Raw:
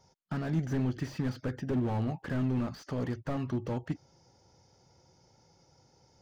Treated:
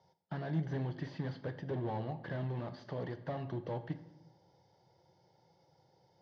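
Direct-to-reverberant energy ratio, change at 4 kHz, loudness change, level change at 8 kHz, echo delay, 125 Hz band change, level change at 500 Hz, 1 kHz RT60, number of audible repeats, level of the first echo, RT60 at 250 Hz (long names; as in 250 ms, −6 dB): 11.0 dB, −5.5 dB, −6.0 dB, can't be measured, no echo audible, −5.5 dB, −3.0 dB, 0.85 s, no echo audible, no echo audible, 1.0 s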